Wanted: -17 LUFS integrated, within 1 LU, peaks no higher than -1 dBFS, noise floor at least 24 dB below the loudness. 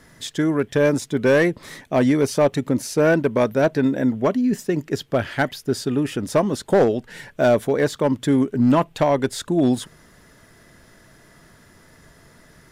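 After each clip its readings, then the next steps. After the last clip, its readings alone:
clipped samples 1.2%; clipping level -10.0 dBFS; loudness -20.5 LUFS; peak level -10.0 dBFS; loudness target -17.0 LUFS
-> clip repair -10 dBFS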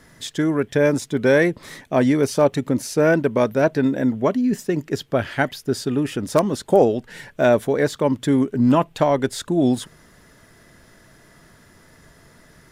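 clipped samples 0.0%; loudness -20.0 LUFS; peak level -1.5 dBFS; loudness target -17.0 LUFS
-> trim +3 dB; peak limiter -1 dBFS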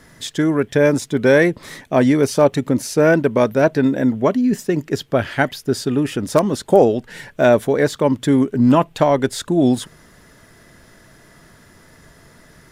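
loudness -17.0 LUFS; peak level -1.0 dBFS; noise floor -49 dBFS

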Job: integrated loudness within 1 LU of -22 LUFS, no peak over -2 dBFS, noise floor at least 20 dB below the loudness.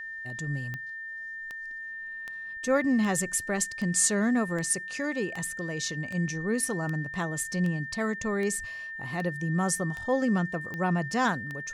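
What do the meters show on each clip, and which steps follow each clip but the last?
clicks found 15; steady tone 1.8 kHz; tone level -36 dBFS; loudness -29.0 LUFS; peak level -12.0 dBFS; loudness target -22.0 LUFS
-> de-click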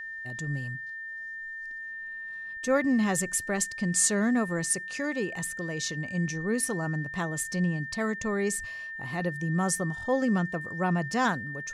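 clicks found 0; steady tone 1.8 kHz; tone level -36 dBFS
-> band-stop 1.8 kHz, Q 30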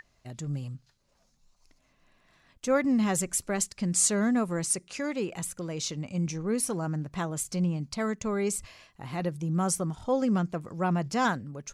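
steady tone not found; loudness -29.0 LUFS; peak level -12.0 dBFS; loudness target -22.0 LUFS
-> trim +7 dB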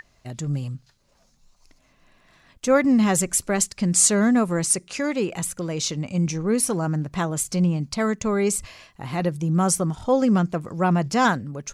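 loudness -22.0 LUFS; peak level -5.0 dBFS; noise floor -62 dBFS

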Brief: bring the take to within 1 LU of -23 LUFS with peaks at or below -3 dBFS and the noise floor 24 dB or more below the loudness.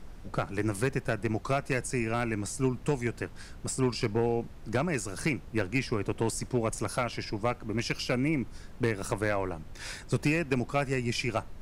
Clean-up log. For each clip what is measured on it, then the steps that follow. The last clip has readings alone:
clipped samples 0.4%; clipping level -18.0 dBFS; noise floor -46 dBFS; noise floor target -55 dBFS; loudness -31.0 LUFS; peak level -18.0 dBFS; loudness target -23.0 LUFS
-> clip repair -18 dBFS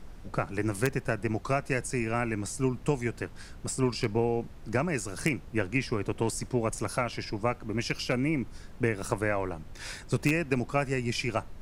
clipped samples 0.0%; noise floor -46 dBFS; noise floor target -55 dBFS
-> noise print and reduce 9 dB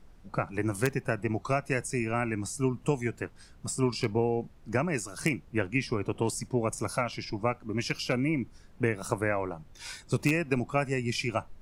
noise floor -54 dBFS; noise floor target -55 dBFS
-> noise print and reduce 6 dB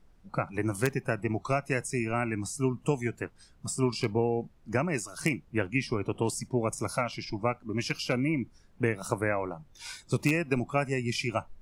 noise floor -59 dBFS; loudness -31.0 LUFS; peak level -9.0 dBFS; loudness target -23.0 LUFS
-> trim +8 dB; peak limiter -3 dBFS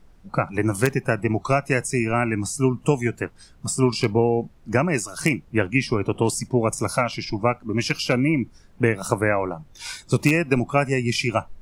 loudness -23.0 LUFS; peak level -3.0 dBFS; noise floor -51 dBFS

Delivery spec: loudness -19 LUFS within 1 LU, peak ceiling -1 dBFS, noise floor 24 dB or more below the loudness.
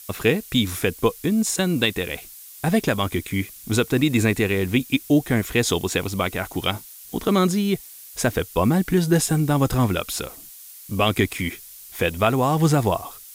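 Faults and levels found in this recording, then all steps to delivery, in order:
noise floor -43 dBFS; noise floor target -46 dBFS; loudness -22.0 LUFS; peak level -6.5 dBFS; loudness target -19.0 LUFS
-> noise reduction 6 dB, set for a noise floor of -43 dBFS; trim +3 dB

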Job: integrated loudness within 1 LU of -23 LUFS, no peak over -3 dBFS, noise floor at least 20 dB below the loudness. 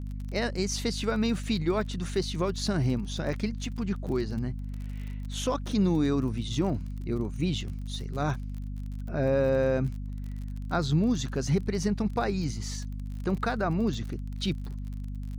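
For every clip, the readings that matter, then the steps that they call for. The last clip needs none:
tick rate 34 per s; hum 50 Hz; highest harmonic 250 Hz; hum level -33 dBFS; loudness -30.0 LUFS; peak level -14.5 dBFS; loudness target -23.0 LUFS
-> de-click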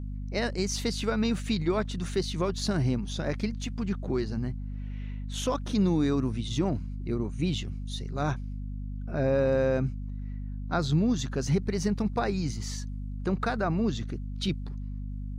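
tick rate 0 per s; hum 50 Hz; highest harmonic 250 Hz; hum level -33 dBFS
-> hum notches 50/100/150/200/250 Hz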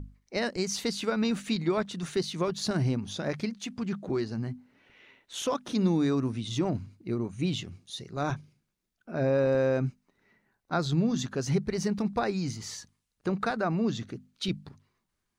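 hum not found; loudness -30.5 LUFS; peak level -15.0 dBFS; loudness target -23.0 LUFS
-> trim +7.5 dB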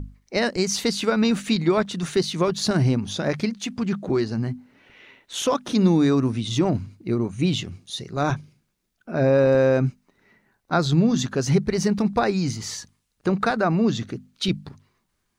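loudness -23.0 LUFS; peak level -7.5 dBFS; noise floor -74 dBFS

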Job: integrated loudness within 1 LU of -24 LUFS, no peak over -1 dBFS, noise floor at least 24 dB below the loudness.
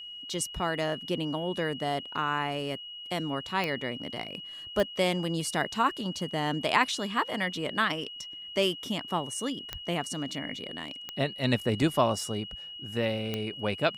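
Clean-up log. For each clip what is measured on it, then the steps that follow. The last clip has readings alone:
clicks found 5; steady tone 2.9 kHz; tone level -40 dBFS; loudness -30.5 LUFS; peak level -9.0 dBFS; loudness target -24.0 LUFS
-> de-click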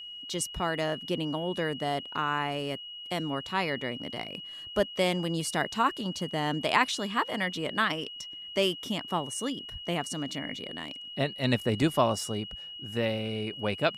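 clicks found 0; steady tone 2.9 kHz; tone level -40 dBFS
-> band-stop 2.9 kHz, Q 30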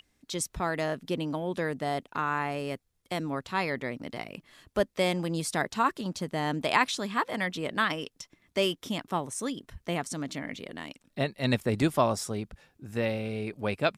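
steady tone not found; loudness -31.0 LUFS; peak level -9.5 dBFS; loudness target -24.0 LUFS
-> trim +7 dB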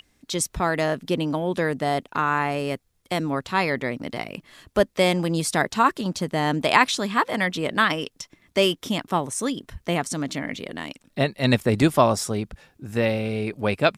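loudness -24.0 LUFS; peak level -2.5 dBFS; noise floor -66 dBFS

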